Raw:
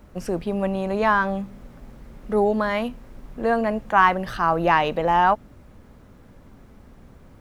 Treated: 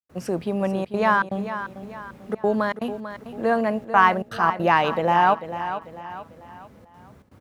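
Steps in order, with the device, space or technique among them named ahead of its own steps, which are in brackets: high-pass 75 Hz 24 dB/octave; trance gate with a delay (trance gate ".xxxxxxxx.xxx.xx" 160 bpm -60 dB; feedback delay 444 ms, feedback 41%, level -11 dB)

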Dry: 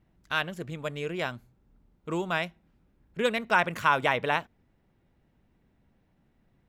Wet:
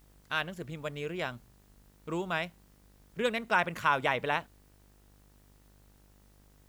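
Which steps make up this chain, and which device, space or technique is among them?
video cassette with head-switching buzz (mains buzz 50 Hz, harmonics 40, -58 dBFS -6 dB/octave; white noise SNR 34 dB); trim -3.5 dB

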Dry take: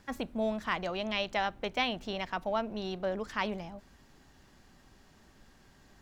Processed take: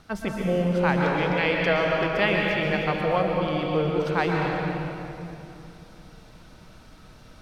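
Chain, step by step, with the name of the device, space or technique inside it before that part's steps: slowed and reverbed (tape speed -19%; reverberation RT60 2.9 s, pre-delay 113 ms, DRR -1.5 dB); trim +6.5 dB

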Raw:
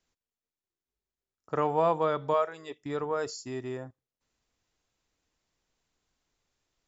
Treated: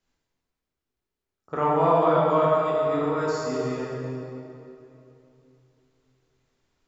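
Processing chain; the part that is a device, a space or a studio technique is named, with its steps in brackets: swimming-pool hall (reverberation RT60 2.9 s, pre-delay 10 ms, DRR -6.5 dB; treble shelf 4 kHz -6 dB)

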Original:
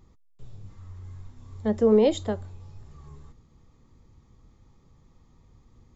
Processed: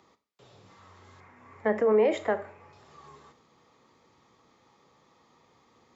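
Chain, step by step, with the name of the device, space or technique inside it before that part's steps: DJ mixer with the lows and highs turned down (three-band isolator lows -13 dB, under 440 Hz, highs -13 dB, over 5.8 kHz; peak limiter -25 dBFS, peak gain reduction 10 dB); high-pass 190 Hz 12 dB/octave; 1.20–2.73 s: resonant high shelf 2.8 kHz -9 dB, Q 3; Schroeder reverb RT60 0.4 s, combs from 29 ms, DRR 12.5 dB; trim +8 dB

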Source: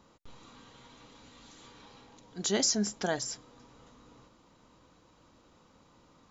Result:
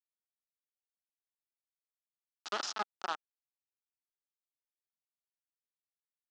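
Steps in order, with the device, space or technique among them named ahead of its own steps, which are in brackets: hand-held game console (bit crusher 4-bit; cabinet simulation 430–5400 Hz, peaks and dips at 500 Hz -8 dB, 820 Hz +5 dB, 1.3 kHz +9 dB, 2.2 kHz -8 dB); trim -7.5 dB

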